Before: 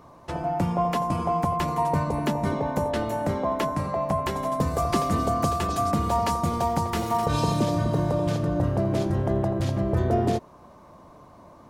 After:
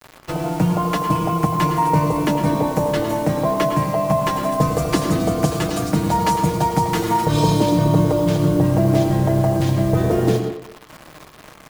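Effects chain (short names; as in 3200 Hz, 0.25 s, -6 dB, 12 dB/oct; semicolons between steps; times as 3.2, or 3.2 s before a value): comb 6.4 ms, depth 75%; bit-crush 7-bit; speakerphone echo 0.22 s, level -15 dB; reverb RT60 0.45 s, pre-delay 99 ms, DRR 7 dB; gain +4.5 dB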